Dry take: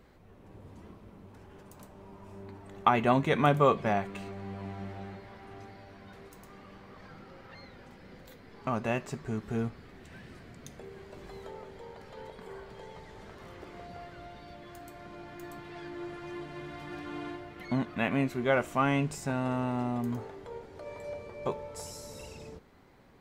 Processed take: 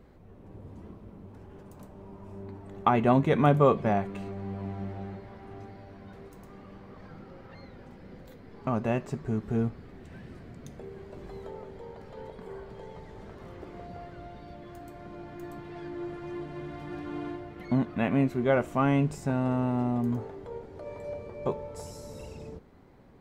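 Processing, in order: tilt shelf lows +5 dB

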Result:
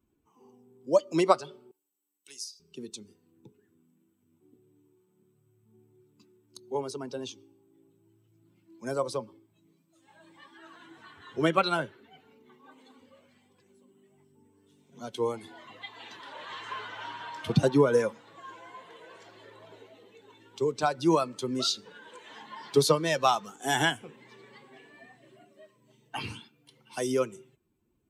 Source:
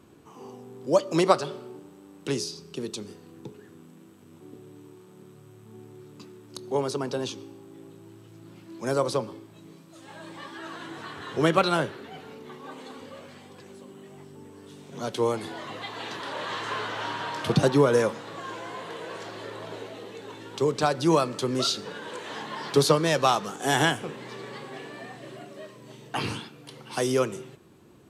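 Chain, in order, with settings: expander on every frequency bin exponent 1.5; 1.71–2.60 s: differentiator

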